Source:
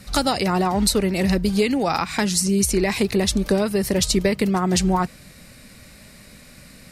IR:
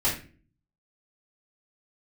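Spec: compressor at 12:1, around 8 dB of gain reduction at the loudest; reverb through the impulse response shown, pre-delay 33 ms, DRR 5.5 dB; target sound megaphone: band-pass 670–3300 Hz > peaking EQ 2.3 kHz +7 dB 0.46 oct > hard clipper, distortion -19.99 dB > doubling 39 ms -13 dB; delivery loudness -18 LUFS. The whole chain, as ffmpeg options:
-filter_complex "[0:a]acompressor=threshold=0.0708:ratio=12,asplit=2[s0][s1];[1:a]atrim=start_sample=2205,adelay=33[s2];[s1][s2]afir=irnorm=-1:irlink=0,volume=0.15[s3];[s0][s3]amix=inputs=2:normalize=0,highpass=670,lowpass=3300,equalizer=f=2300:t=o:w=0.46:g=7,asoftclip=type=hard:threshold=0.0841,asplit=2[s4][s5];[s5]adelay=39,volume=0.224[s6];[s4][s6]amix=inputs=2:normalize=0,volume=5.01"

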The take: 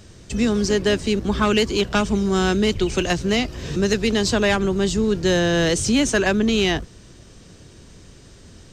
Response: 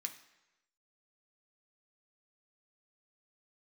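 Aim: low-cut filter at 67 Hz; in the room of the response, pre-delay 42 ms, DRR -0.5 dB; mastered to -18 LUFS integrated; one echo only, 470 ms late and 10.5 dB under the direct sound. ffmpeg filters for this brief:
-filter_complex "[0:a]highpass=67,aecho=1:1:470:0.299,asplit=2[s0][s1];[1:a]atrim=start_sample=2205,adelay=42[s2];[s1][s2]afir=irnorm=-1:irlink=0,volume=1.33[s3];[s0][s3]amix=inputs=2:normalize=0,volume=0.944"

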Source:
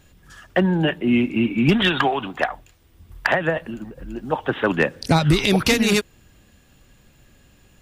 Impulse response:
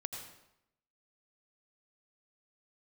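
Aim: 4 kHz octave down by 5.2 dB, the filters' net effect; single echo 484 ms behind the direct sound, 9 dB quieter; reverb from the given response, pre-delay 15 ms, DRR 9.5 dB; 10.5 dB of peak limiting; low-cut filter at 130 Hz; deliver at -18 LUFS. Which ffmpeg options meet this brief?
-filter_complex "[0:a]highpass=130,equalizer=f=4000:t=o:g=-7,alimiter=limit=0.168:level=0:latency=1,aecho=1:1:484:0.355,asplit=2[s0][s1];[1:a]atrim=start_sample=2205,adelay=15[s2];[s1][s2]afir=irnorm=-1:irlink=0,volume=0.355[s3];[s0][s3]amix=inputs=2:normalize=0,volume=2.37"

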